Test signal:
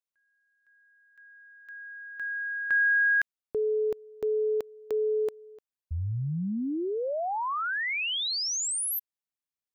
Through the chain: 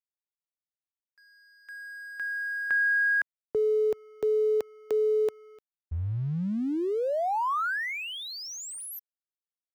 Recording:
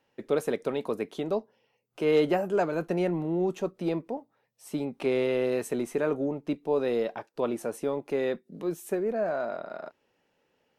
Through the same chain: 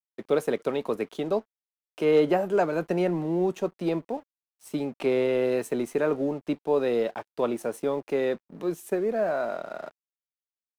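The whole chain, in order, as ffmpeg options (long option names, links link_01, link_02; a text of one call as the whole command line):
ffmpeg -i in.wav -filter_complex "[0:a]lowshelf=frequency=270:gain=-3,acrossover=split=120|1600[link_01][link_02][link_03];[link_03]acompressor=threshold=-42dB:ratio=5:attack=49:release=307:knee=6[link_04];[link_01][link_02][link_04]amix=inputs=3:normalize=0,aeval=exprs='sgn(val(0))*max(abs(val(0))-0.00168,0)':channel_layout=same,volume=3.5dB" out.wav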